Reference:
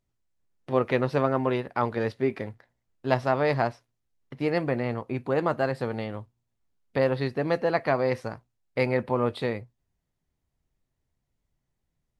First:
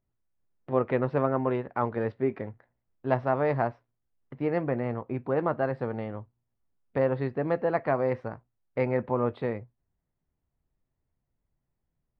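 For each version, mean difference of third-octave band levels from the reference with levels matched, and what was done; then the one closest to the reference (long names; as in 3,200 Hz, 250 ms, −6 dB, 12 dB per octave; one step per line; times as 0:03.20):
3.0 dB: low-pass filter 1,700 Hz 12 dB per octave
level −1.5 dB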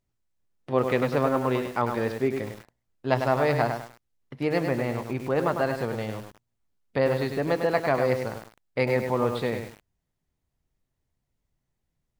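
5.5 dB: feedback echo at a low word length 101 ms, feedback 35%, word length 7 bits, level −6 dB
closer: first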